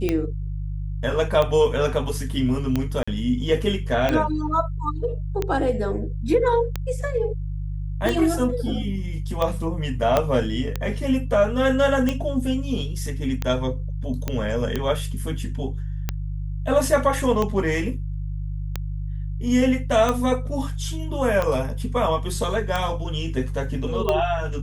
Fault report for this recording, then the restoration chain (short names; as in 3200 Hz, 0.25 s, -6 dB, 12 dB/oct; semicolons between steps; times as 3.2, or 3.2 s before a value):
hum 50 Hz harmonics 3 -28 dBFS
tick 45 rpm -10 dBFS
3.03–3.08 gap 45 ms
10.17 pop -5 dBFS
14.28 pop -11 dBFS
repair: de-click; de-hum 50 Hz, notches 3; interpolate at 3.03, 45 ms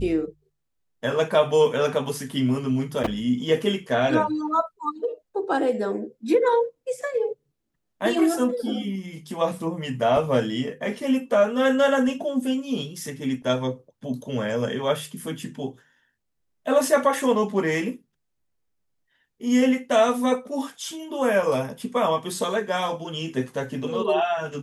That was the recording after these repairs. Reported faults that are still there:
10.17 pop